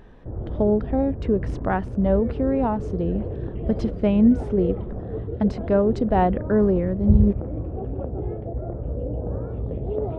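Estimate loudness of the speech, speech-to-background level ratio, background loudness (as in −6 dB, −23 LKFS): −22.5 LKFS, 7.0 dB, −29.5 LKFS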